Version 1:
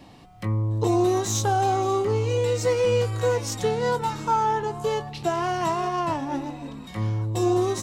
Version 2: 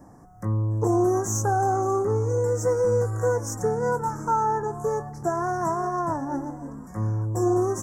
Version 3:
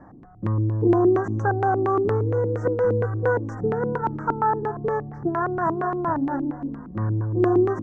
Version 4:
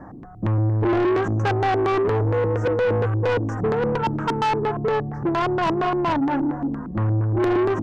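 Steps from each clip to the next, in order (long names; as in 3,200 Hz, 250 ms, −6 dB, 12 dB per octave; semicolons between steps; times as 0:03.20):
elliptic band-stop filter 1,600–6,100 Hz, stop band 60 dB
auto-filter low-pass square 4.3 Hz 310–1,700 Hz; level +1 dB
soft clipping −24.5 dBFS, distortion −8 dB; level +7 dB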